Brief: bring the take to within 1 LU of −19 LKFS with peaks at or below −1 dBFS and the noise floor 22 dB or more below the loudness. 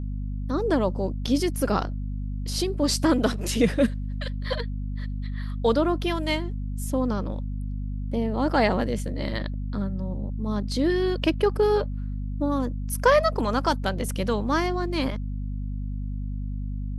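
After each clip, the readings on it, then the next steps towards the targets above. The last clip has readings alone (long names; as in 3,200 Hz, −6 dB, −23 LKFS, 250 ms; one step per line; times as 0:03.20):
mains hum 50 Hz; hum harmonics up to 250 Hz; level of the hum −27 dBFS; integrated loudness −26.5 LKFS; sample peak −8.0 dBFS; target loudness −19.0 LKFS
→ mains-hum notches 50/100/150/200/250 Hz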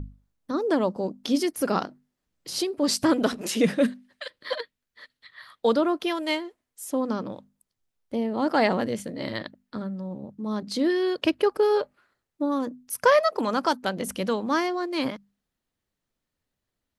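mains hum none found; integrated loudness −26.0 LKFS; sample peak −9.0 dBFS; target loudness −19.0 LKFS
→ level +7 dB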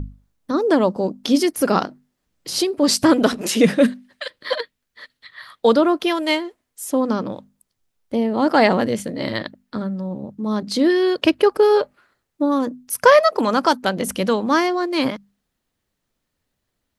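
integrated loudness −19.0 LKFS; sample peak −2.0 dBFS; background noise floor −77 dBFS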